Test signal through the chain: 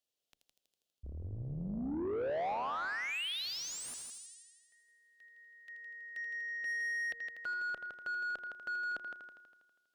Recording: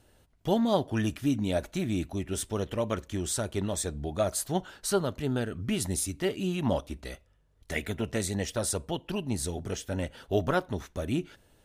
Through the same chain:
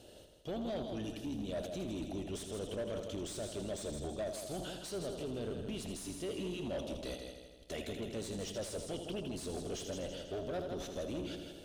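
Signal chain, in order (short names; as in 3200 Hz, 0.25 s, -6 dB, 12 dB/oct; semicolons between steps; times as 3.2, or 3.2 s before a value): octaver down 2 oct, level -5 dB; band shelf 1400 Hz -14.5 dB; reverse; compressor 10:1, threshold -37 dBFS; reverse; limiter -36.5 dBFS; multi-head echo 81 ms, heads first and second, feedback 52%, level -10 dB; overdrive pedal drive 20 dB, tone 2300 Hz, clips at -30 dBFS; gain +1 dB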